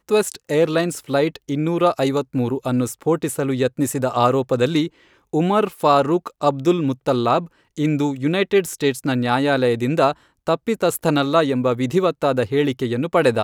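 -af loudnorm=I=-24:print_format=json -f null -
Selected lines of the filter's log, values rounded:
"input_i" : "-19.9",
"input_tp" : "-2.2",
"input_lra" : "1.3",
"input_thresh" : "-29.9",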